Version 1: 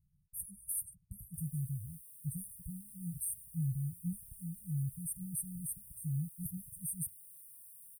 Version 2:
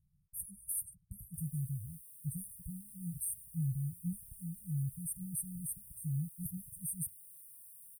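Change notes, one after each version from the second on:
none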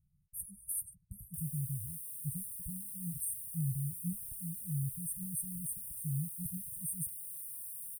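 background +10.5 dB

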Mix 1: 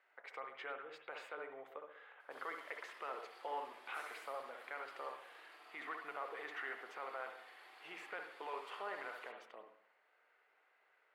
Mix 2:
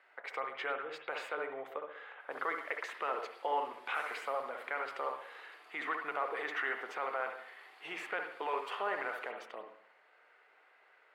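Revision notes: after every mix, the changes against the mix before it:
speech +9.0 dB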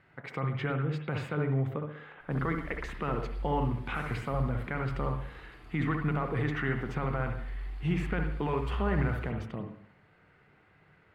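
master: remove HPF 500 Hz 24 dB/oct

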